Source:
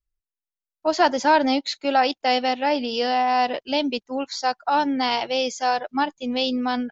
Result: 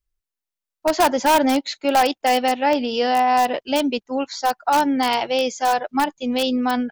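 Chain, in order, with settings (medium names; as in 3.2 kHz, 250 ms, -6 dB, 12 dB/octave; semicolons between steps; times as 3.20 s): dynamic bell 4.7 kHz, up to -5 dB, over -41 dBFS, Q 1.2; in parallel at -6 dB: integer overflow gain 12 dB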